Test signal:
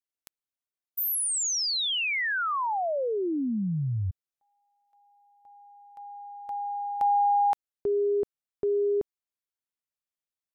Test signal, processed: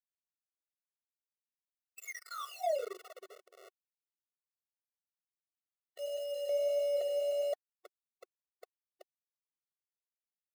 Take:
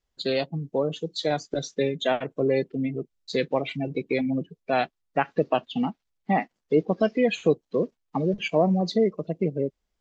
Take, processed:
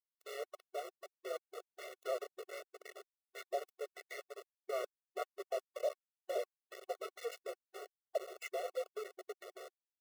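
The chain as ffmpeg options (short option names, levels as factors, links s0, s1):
-af "bandreject=f=60:t=h:w=6,bandreject=f=120:t=h:w=6,bandreject=f=180:t=h:w=6,bandreject=f=240:t=h:w=6,bandreject=f=300:t=h:w=6,bandreject=f=360:t=h:w=6,afftfilt=real='re*lt(hypot(re,im),0.501)':imag='im*lt(hypot(re,im),0.501)':win_size=1024:overlap=0.75,adynamicequalizer=threshold=0.00447:dfrequency=810:dqfactor=3.7:tfrequency=810:tqfactor=3.7:attack=5:release=100:ratio=0.375:range=3.5:mode=boostabove:tftype=bell,acompressor=threshold=0.0251:ratio=3:attack=5.7:release=697:knee=6:detection=peak,highpass=f=200:w=0.5412,highpass=f=200:w=1.3066,equalizer=f=200:t=q:w=4:g=8,equalizer=f=340:t=q:w=4:g=-4,equalizer=f=920:t=q:w=4:g=8,equalizer=f=1900:t=q:w=4:g=-5,lowpass=f=2800:w=0.5412,lowpass=f=2800:w=1.3066,asoftclip=type=tanh:threshold=0.1,afreqshift=-240,flanger=delay=7.3:depth=5:regen=83:speed=1.6:shape=triangular,aeval=exprs='val(0)*gte(abs(val(0)),0.01)':c=same,afftfilt=real='re*eq(mod(floor(b*sr/1024/370),2),1)':imag='im*eq(mod(floor(b*sr/1024/370),2),1)':win_size=1024:overlap=0.75,volume=1.26"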